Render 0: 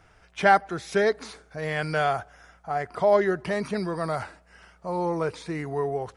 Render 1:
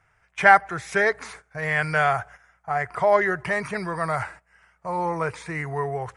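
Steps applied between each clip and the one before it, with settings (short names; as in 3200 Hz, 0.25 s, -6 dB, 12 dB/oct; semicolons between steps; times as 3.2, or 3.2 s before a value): gate -47 dBFS, range -11 dB; graphic EQ 125/250/1000/2000/4000/8000 Hz +8/-8/+5/+10/-6/+6 dB; gain -1 dB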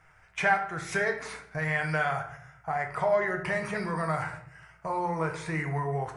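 compressor 2:1, threshold -39 dBFS, peak gain reduction 16.5 dB; shoebox room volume 110 m³, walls mixed, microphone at 0.56 m; gain +3 dB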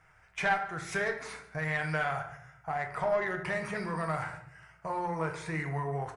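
one diode to ground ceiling -18.5 dBFS; echo 0.144 s -20 dB; gain -2.5 dB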